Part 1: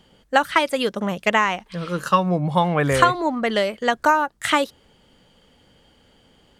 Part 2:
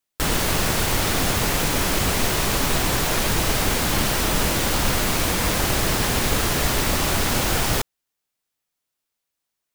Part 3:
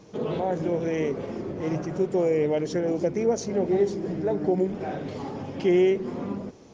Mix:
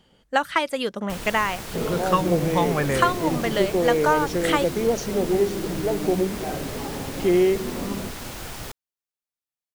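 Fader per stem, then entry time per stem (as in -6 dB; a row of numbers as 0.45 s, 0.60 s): -4.0 dB, -14.0 dB, +1.5 dB; 0.00 s, 0.90 s, 1.60 s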